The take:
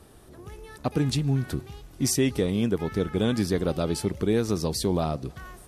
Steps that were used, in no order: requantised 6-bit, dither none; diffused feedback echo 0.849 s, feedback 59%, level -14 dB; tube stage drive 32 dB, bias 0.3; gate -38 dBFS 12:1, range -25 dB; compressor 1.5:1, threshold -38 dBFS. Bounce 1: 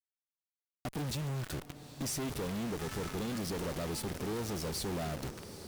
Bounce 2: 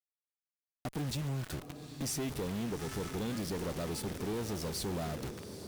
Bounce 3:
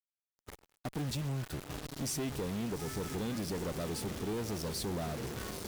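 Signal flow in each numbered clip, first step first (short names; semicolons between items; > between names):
gate > requantised > tube stage > diffused feedback echo > compressor; gate > requantised > compressor > diffused feedback echo > tube stage; diffused feedback echo > requantised > compressor > gate > tube stage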